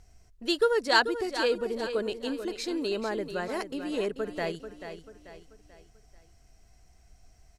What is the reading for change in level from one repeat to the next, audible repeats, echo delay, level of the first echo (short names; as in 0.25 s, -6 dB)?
-7.5 dB, 4, 0.438 s, -10.0 dB